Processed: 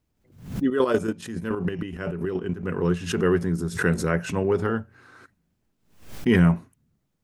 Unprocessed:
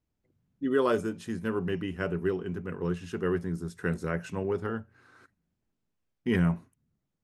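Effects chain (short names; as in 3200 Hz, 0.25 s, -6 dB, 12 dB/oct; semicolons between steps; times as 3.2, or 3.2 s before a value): 0.66–2.66 chopper 7.1 Hz, depth 65%, duty 30%; backwards sustainer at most 110 dB/s; gain +7.5 dB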